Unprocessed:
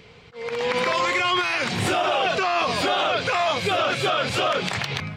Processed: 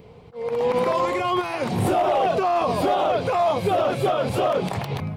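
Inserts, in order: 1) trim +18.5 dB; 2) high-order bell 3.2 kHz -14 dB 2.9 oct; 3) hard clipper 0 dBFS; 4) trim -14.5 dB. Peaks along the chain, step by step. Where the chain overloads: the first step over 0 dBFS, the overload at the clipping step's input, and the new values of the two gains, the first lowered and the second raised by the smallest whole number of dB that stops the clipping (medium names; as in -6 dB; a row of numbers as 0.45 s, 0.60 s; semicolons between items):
+7.0 dBFS, +4.5 dBFS, 0.0 dBFS, -14.5 dBFS; step 1, 4.5 dB; step 1 +13.5 dB, step 4 -9.5 dB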